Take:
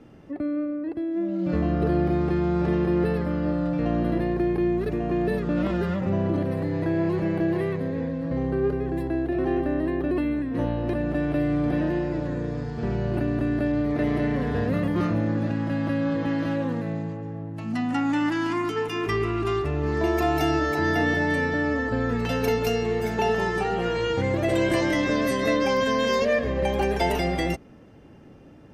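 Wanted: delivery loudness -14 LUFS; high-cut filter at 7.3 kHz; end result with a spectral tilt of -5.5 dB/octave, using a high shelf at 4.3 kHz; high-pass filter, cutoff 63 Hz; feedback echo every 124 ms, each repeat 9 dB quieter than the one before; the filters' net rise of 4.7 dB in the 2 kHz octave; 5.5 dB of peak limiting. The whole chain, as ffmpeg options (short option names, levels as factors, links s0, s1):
-af "highpass=63,lowpass=7300,equalizer=f=2000:t=o:g=7,highshelf=f=4300:g=-8,alimiter=limit=0.188:level=0:latency=1,aecho=1:1:124|248|372|496:0.355|0.124|0.0435|0.0152,volume=3.55"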